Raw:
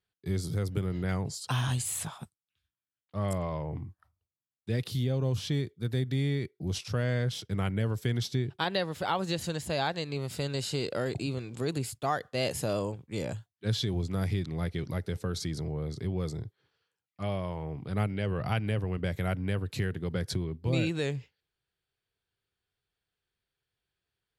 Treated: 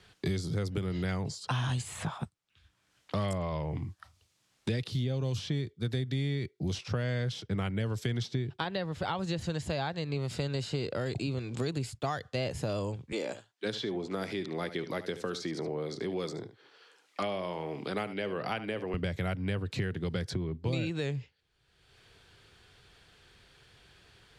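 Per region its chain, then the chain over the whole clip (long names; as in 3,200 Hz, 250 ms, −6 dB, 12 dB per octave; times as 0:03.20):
0:13.12–0:18.94: high-pass filter 290 Hz 24 dB per octave + single-tap delay 73 ms −14 dB
whole clip: low-pass filter 7,000 Hz 12 dB per octave; multiband upward and downward compressor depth 100%; level −2 dB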